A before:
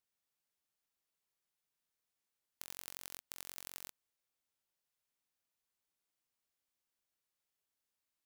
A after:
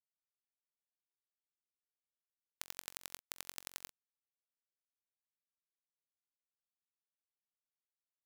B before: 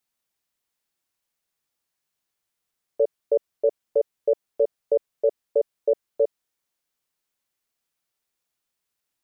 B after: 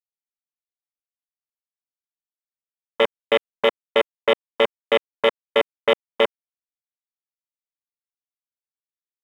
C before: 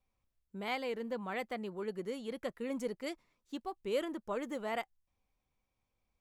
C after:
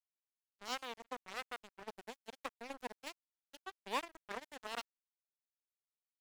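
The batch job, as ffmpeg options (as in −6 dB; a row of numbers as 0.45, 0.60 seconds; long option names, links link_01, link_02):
-af "lowpass=frequency=11000:width=0.5412,lowpass=frequency=11000:width=1.3066,aeval=exprs='0.266*(cos(1*acos(clip(val(0)/0.266,-1,1)))-cos(1*PI/2))+0.00299*(cos(3*acos(clip(val(0)/0.266,-1,1)))-cos(3*PI/2))+0.0944*(cos(6*acos(clip(val(0)/0.266,-1,1)))-cos(6*PI/2))+0.0531*(cos(7*acos(clip(val(0)/0.266,-1,1)))-cos(7*PI/2))':channel_layout=same,highpass=300,aeval=exprs='sgn(val(0))*max(abs(val(0))-0.00708,0)':channel_layout=same,volume=3dB"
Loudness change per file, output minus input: +1.0, +4.0, −7.0 LU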